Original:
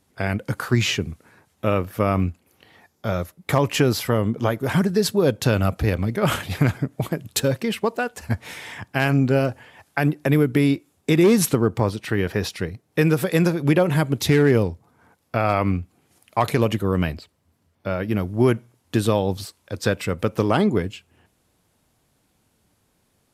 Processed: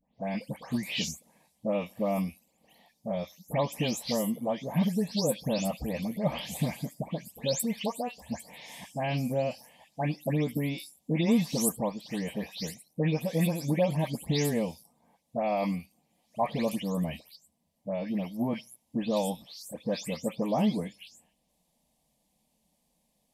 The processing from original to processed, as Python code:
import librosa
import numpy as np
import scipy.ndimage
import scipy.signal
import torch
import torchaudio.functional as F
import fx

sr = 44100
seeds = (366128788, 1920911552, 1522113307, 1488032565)

y = fx.spec_delay(x, sr, highs='late', ms=235)
y = fx.fixed_phaser(y, sr, hz=380.0, stages=6)
y = y * 10.0 ** (-5.0 / 20.0)